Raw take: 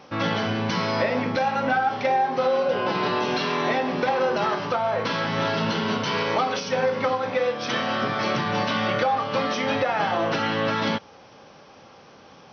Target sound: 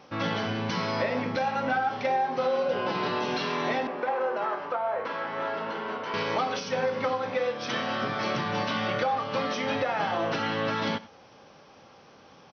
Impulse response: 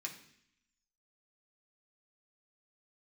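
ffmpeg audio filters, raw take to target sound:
-filter_complex "[0:a]asettb=1/sr,asplit=3[a][b][c];[a]atrim=end=3.874[d];[b]atrim=start=3.87:end=6.14,asetpts=PTS-STARTPTS,afade=t=in:d=0.004:c=qsin,afade=t=out:st=2.266:d=0.004:c=qsin,acrossover=split=320 2200:gain=0.126 1 0.158[e][f][g];[e][f][g]amix=inputs=3:normalize=0[h];[c]atrim=start=6.136[i];[d][h]acrossfade=d=0.004:c1=hsin:c2=qsin[j];[j][i]acrossfade=d=0.004:c1=qsin:c2=hsin,asplit=2[k][l];[l]adelay=93.29,volume=-19dB,highshelf=f=4k:g=-2.1[m];[k][m]amix=inputs=2:normalize=0,volume=-4.5dB"

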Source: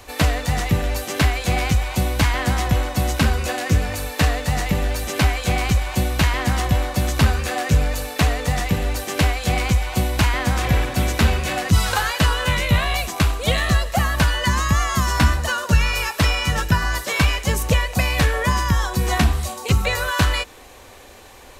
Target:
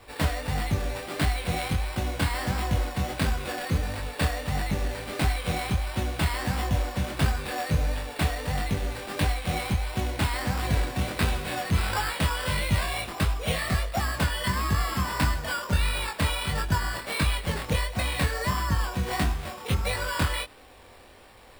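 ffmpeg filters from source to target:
-af "acrusher=samples=7:mix=1:aa=0.000001,flanger=delay=19:depth=7.1:speed=1.5,volume=-4.5dB"

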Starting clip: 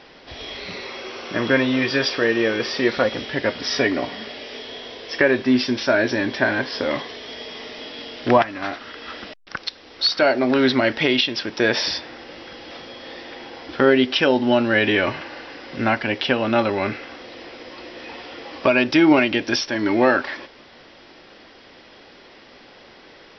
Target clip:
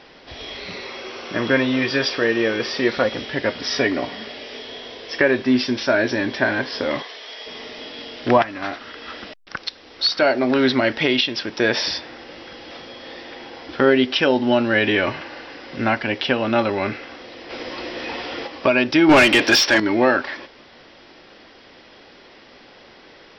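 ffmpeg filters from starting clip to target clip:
-filter_complex "[0:a]asplit=3[a][b][c];[a]afade=t=out:st=7.02:d=0.02[d];[b]highpass=610,afade=t=in:st=7.02:d=0.02,afade=t=out:st=7.45:d=0.02[e];[c]afade=t=in:st=7.45:d=0.02[f];[d][e][f]amix=inputs=3:normalize=0,asplit=3[g][h][i];[g]afade=t=out:st=17.49:d=0.02[j];[h]acontrast=84,afade=t=in:st=17.49:d=0.02,afade=t=out:st=18.46:d=0.02[k];[i]afade=t=in:st=18.46:d=0.02[l];[j][k][l]amix=inputs=3:normalize=0,asettb=1/sr,asplit=3[m][n][o];[m]atrim=end=19.094[p];[n]atrim=start=19.09:end=19.8,asetpts=PTS-STARTPTS,afade=t=in:d=0.004:c=qsin,afade=t=out:st=0.706:d=0.004:c=qsin,asplit=2[q][r];[r]highpass=f=720:p=1,volume=21dB,asoftclip=type=tanh:threshold=-4dB[s];[q][s]amix=inputs=2:normalize=0,lowpass=f=4.6k:p=1,volume=-6dB[t];[o]atrim=start=19.796[u];[p][t]acrossfade=d=0.004:c1=hsin:c2=qsin[v];[v][u]acrossfade=d=0.004:c1=qsin:c2=hsin"

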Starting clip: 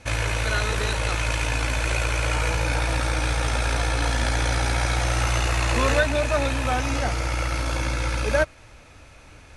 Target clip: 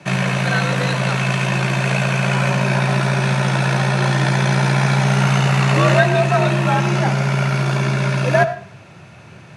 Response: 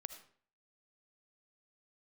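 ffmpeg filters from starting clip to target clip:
-filter_complex "[0:a]afreqshift=77,asplit=2[a][b];[b]aemphasis=mode=reproduction:type=50fm[c];[1:a]atrim=start_sample=2205[d];[c][d]afir=irnorm=-1:irlink=0,volume=12dB[e];[a][e]amix=inputs=2:normalize=0,volume=-4.5dB"

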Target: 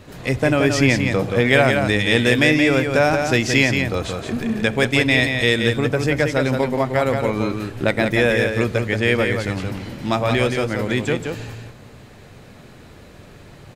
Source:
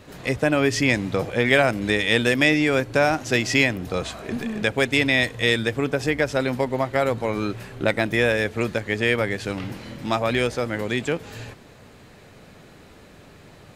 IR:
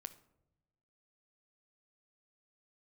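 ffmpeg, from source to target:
-filter_complex "[0:a]aecho=1:1:175:0.531,asplit=2[a][b];[1:a]atrim=start_sample=2205,lowshelf=f=240:g=8.5[c];[b][c]afir=irnorm=-1:irlink=0,volume=1dB[d];[a][d]amix=inputs=2:normalize=0,volume=-2.5dB"

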